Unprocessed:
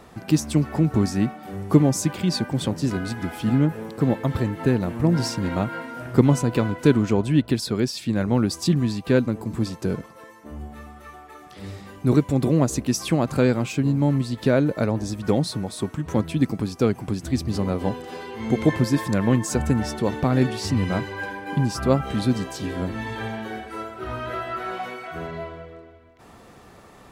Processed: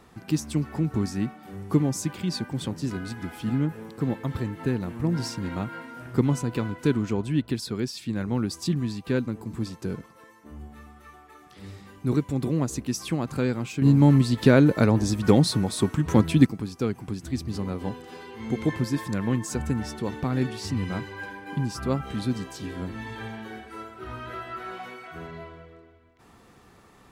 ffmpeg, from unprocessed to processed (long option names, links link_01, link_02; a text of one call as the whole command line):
ffmpeg -i in.wav -filter_complex "[0:a]asplit=3[link_01][link_02][link_03];[link_01]atrim=end=13.822[link_04];[link_02]atrim=start=13.818:end=16.462,asetpts=PTS-STARTPTS,volume=9.5dB[link_05];[link_03]atrim=start=16.458[link_06];[link_04][link_05]acrossfade=duration=0.004:curve1=hsin:curve2=hsin[link_07];[link_07][link_06]acrossfade=duration=0.004:curve1=hsin:curve2=hsin,equalizer=frequency=610:width_type=o:width=0.57:gain=-6,volume=-5.5dB" out.wav